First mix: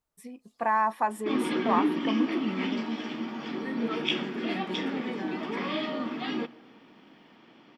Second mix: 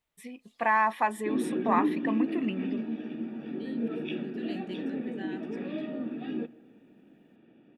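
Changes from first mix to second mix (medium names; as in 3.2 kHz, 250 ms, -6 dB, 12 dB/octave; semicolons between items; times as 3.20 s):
second voice -4.5 dB; background: add boxcar filter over 42 samples; master: add high-order bell 2.6 kHz +8.5 dB 1.3 oct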